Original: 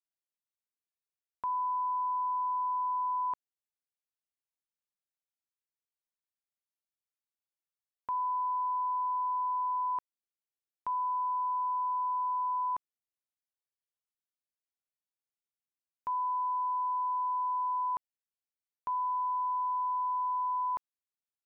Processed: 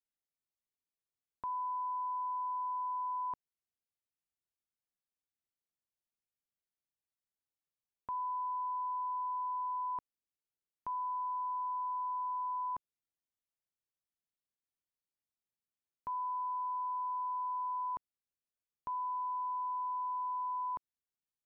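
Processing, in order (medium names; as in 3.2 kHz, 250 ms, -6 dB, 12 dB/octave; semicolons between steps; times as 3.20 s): bass shelf 460 Hz +10 dB; trim -7 dB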